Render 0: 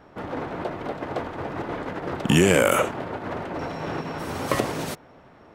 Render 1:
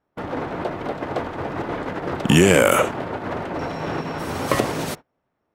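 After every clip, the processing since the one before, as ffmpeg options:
ffmpeg -i in.wav -af "agate=range=-28dB:threshold=-37dB:ratio=16:detection=peak,volume=3.5dB" out.wav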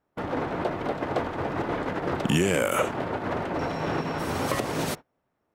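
ffmpeg -i in.wav -af "alimiter=limit=-11dB:level=0:latency=1:release=192,volume=-1.5dB" out.wav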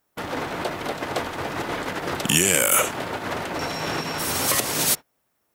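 ffmpeg -i in.wav -af "crystalizer=i=7.5:c=0,volume=-2dB" out.wav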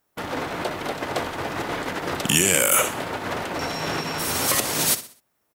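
ffmpeg -i in.wav -af "aecho=1:1:63|126|189|252:0.2|0.0778|0.0303|0.0118" out.wav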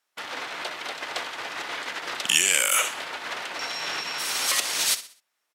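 ffmpeg -i in.wav -af "bandpass=frequency=3600:width_type=q:width=0.63:csg=0,volume=2dB" out.wav

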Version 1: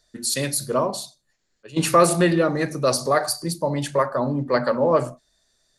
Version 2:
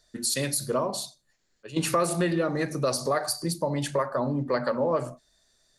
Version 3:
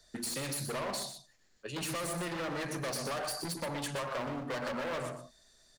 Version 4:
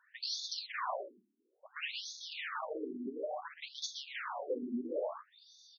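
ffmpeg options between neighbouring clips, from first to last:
ffmpeg -i in.wav -af "acompressor=threshold=-25dB:ratio=2.5" out.wav
ffmpeg -i in.wav -filter_complex "[0:a]asoftclip=type=hard:threshold=-31dB,acrossover=split=120|780[link_01][link_02][link_03];[link_01]acompressor=threshold=-58dB:ratio=4[link_04];[link_02]acompressor=threshold=-42dB:ratio=4[link_05];[link_03]acompressor=threshold=-39dB:ratio=4[link_06];[link_04][link_05][link_06]amix=inputs=3:normalize=0,asplit=2[link_07][link_08];[link_08]adelay=122.4,volume=-7dB,highshelf=frequency=4000:gain=-2.76[link_09];[link_07][link_09]amix=inputs=2:normalize=0,volume=2dB" out.wav
ffmpeg -i in.wav -filter_complex "[0:a]asplit=2[link_01][link_02];[link_02]asoftclip=type=tanh:threshold=-37dB,volume=-5dB[link_03];[link_01][link_03]amix=inputs=2:normalize=0,afftfilt=real='re*between(b*sr/1024,270*pow(4800/270,0.5+0.5*sin(2*PI*0.58*pts/sr))/1.41,270*pow(4800/270,0.5+0.5*sin(2*PI*0.58*pts/sr))*1.41)':imag='im*between(b*sr/1024,270*pow(4800/270,0.5+0.5*sin(2*PI*0.58*pts/sr))/1.41,270*pow(4800/270,0.5+0.5*sin(2*PI*0.58*pts/sr))*1.41)':win_size=1024:overlap=0.75,volume=2.5dB" out.wav

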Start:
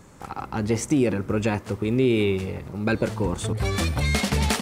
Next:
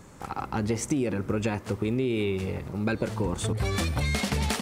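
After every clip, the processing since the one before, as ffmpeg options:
ffmpeg -i in.wav -af "acompressor=threshold=-23dB:ratio=6" out.wav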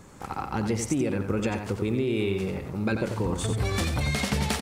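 ffmpeg -i in.wav -af "aecho=1:1:90:0.447" out.wav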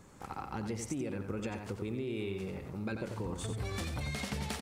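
ffmpeg -i in.wav -af "acompressor=threshold=-31dB:ratio=1.5,volume=-7.5dB" out.wav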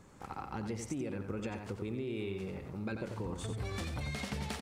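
ffmpeg -i in.wav -af "highshelf=frequency=7300:gain=-5,volume=-1dB" out.wav

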